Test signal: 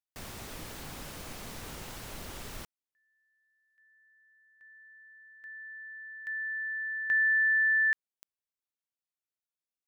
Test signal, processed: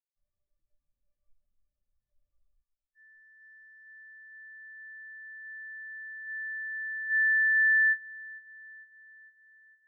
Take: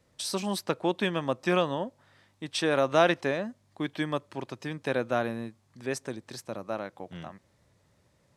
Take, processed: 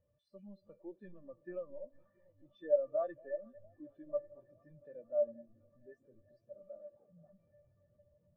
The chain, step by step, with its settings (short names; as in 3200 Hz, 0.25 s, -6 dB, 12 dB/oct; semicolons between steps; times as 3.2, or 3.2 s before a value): zero-crossing step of -27 dBFS; LPF 2700 Hz 6 dB/oct; resonator 590 Hz, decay 0.16 s, harmonics all, mix 80%; echo with dull and thin repeats by turns 0.227 s, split 850 Hz, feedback 89%, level -10.5 dB; spectral expander 2.5:1